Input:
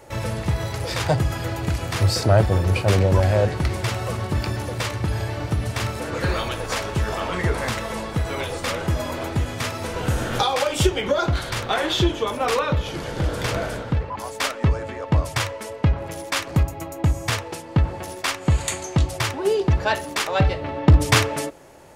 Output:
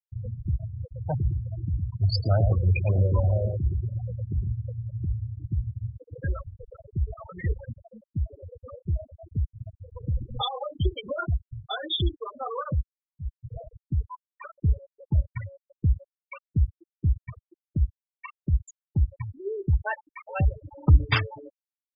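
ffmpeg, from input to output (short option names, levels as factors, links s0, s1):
-filter_complex "[0:a]asettb=1/sr,asplit=3[s0][s1][s2];[s0]atrim=end=1.154[s3];[s1]atrim=start=1.15:end=5.02,asetpts=PTS-STARTPTS,afade=t=in:d=0.004:c=qsin,afade=t=out:st=3.866:d=0.004:c=qsin,aecho=1:1:113:0.531,atrim=end_sample=170667[s4];[s2]atrim=start=5.016[s5];[s3][s4]acrossfade=d=0.004:c1=hsin:c2=qsin[s6];[s6][s5]acrossfade=d=0.004:c1=qsin:c2=hsin,asettb=1/sr,asplit=3[s7][s8][s9];[s7]atrim=end=17.224[s10];[s8]atrim=start=17.22:end=18.53,asetpts=PTS-STARTPTS,afade=t=in:d=0.004:c=qsin,afade=t=out:st=1.306:d=0.004:c=qsin,equalizer=f=110:t=o:w=0.54:g=-6.5[s11];[s9]atrim=start=18.526[s12];[s10][s11]acrossfade=d=0.004:c1=hsin:c2=qsin[s13];[s13][s12]acrossfade=d=0.004:c1=qsin:c2=hsin,asplit=2[s14][s15];[s14]atrim=end=12.89,asetpts=PTS-STARTPTS,afade=t=out:st=12.886:d=0.004:c=hsin:silence=0.0668344[s16];[s15]atrim=start=12.89,asetpts=PTS-STARTPTS,afade=t=in:d=0.88:silence=0.0668344[s17];[s16][s17]concat=n=2:v=0:a=1,afftfilt=real='re*gte(hypot(re,im),0.251)':imag='im*gte(hypot(re,im),0.251)':win_size=1024:overlap=0.75,equalizer=f=400:w=0.33:g=-12.5,volume=1.12"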